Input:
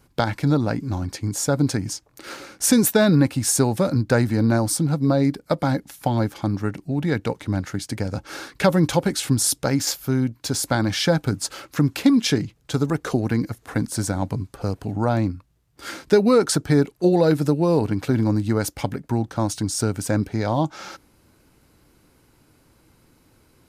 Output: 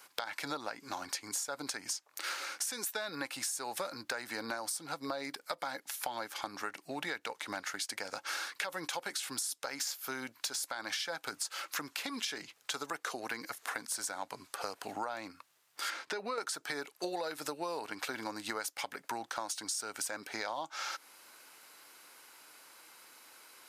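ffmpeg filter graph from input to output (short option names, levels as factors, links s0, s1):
-filter_complex "[0:a]asettb=1/sr,asplit=3[s0][s1][s2];[s0]atrim=end=15.904[s3];[s1]atrim=start=15.9:end=16.38,asetpts=PTS-STARTPTS,afade=t=in:d=0.004:c=qsin,afade=t=out:st=0.476:d=0.004:c=qsin,aemphasis=mode=reproduction:type=50fm,acompressor=threshold=0.1:ratio=4:attack=3.2:release=140:knee=1:detection=peak[s4];[s2]atrim=start=16.376[s5];[s3][s4]acrossfade=d=0.004:c1=hsin:c2=qsin[s6];[s6][s5]acrossfade=d=0.004:c1=qsin:c2=hsin,highpass=970,alimiter=limit=0.112:level=0:latency=1:release=164,acompressor=threshold=0.00708:ratio=6,volume=2.37"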